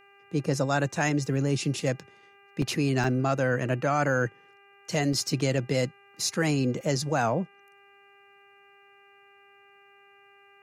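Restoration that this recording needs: de-hum 399.1 Hz, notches 7; interpolate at 2.62/3.04/5.13 s, 2.4 ms

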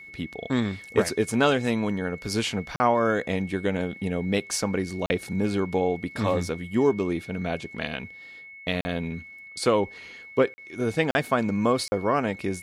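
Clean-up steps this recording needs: band-stop 2.2 kHz, Q 30; interpolate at 2.76/5.06/8.81/10.54/11.11/11.88 s, 40 ms

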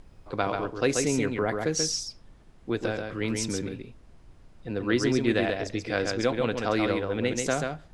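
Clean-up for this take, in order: noise print and reduce 23 dB; inverse comb 135 ms -4.5 dB

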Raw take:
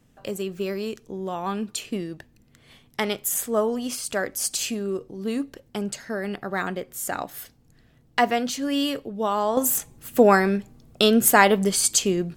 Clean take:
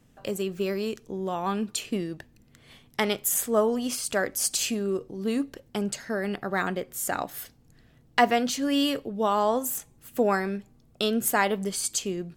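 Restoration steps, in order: gain correction -8 dB, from 9.57 s

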